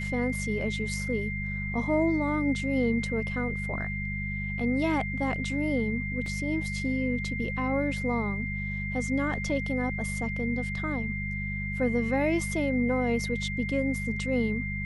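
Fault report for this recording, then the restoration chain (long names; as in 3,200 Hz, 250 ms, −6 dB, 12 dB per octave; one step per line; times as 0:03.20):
mains hum 50 Hz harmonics 4 −34 dBFS
whistle 2,100 Hz −34 dBFS
0:06.26: drop-out 2.6 ms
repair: hum removal 50 Hz, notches 4
notch filter 2,100 Hz, Q 30
repair the gap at 0:06.26, 2.6 ms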